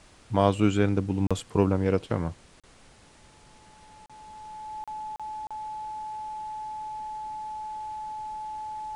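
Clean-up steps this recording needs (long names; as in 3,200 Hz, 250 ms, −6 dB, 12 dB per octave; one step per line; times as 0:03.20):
notch filter 860 Hz, Q 30
repair the gap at 0:01.27/0:02.60/0:04.06/0:04.84/0:05.16/0:05.47, 36 ms
noise reduction from a noise print 18 dB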